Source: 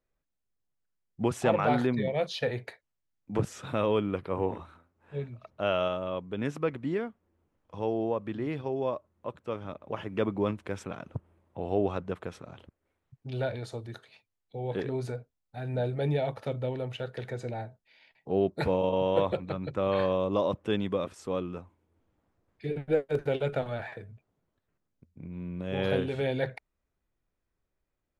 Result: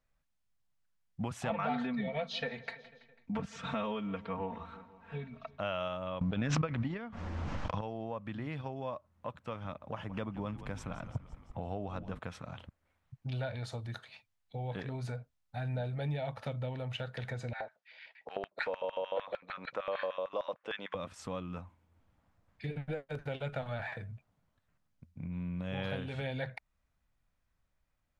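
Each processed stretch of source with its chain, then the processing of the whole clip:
0:01.50–0:05.59: low-pass filter 5,200 Hz + comb filter 4.4 ms, depth 98% + repeating echo 165 ms, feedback 57%, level −23 dB
0:06.21–0:07.81: low-pass filter 6,200 Hz 24 dB per octave + transient designer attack +12 dB, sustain +2 dB + background raised ahead of every attack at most 23 dB per second
0:09.78–0:12.19: parametric band 2,300 Hz −4 dB 1.6 octaves + echo with shifted repeats 170 ms, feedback 61%, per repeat −75 Hz, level −15.5 dB
0:17.53–0:20.95: low-pass filter 5,700 Hz + auto-filter high-pass square 6.6 Hz 470–1,600 Hz
whole clip: high-shelf EQ 8,300 Hz −8.5 dB; downward compressor 2.5 to 1, threshold −38 dBFS; parametric band 380 Hz −13.5 dB 0.83 octaves; level +4.5 dB

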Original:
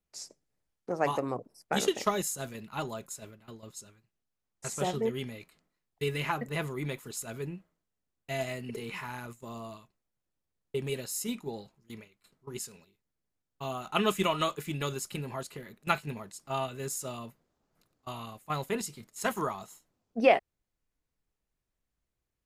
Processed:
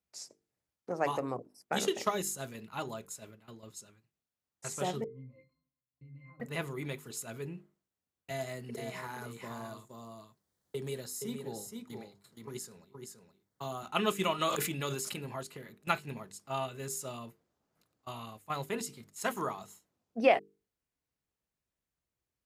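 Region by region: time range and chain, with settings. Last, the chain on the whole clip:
0:05.04–0:06.40: parametric band 160 Hz +8.5 dB 1.7 octaves + downward compressor 12 to 1, threshold −36 dBFS + resonances in every octave C, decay 0.23 s
0:08.30–0:13.83: parametric band 2,600 Hz −10 dB 0.39 octaves + single-tap delay 471 ms −7.5 dB + multiband upward and downward compressor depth 40%
0:14.38–0:15.24: low-shelf EQ 76 Hz −10.5 dB + level that may fall only so fast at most 23 dB per second
whole clip: high-pass filter 62 Hz; mains-hum notches 50/100/150/200/250/300/350/400/450 Hz; level −2.5 dB

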